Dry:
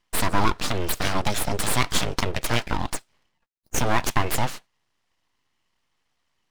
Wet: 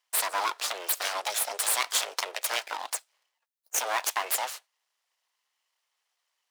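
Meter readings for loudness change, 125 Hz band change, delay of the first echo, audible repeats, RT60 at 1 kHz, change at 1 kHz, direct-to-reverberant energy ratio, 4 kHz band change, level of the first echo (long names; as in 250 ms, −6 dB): −3.0 dB, below −40 dB, no echo audible, no echo audible, no reverb audible, −5.0 dB, no reverb audible, −2.0 dB, no echo audible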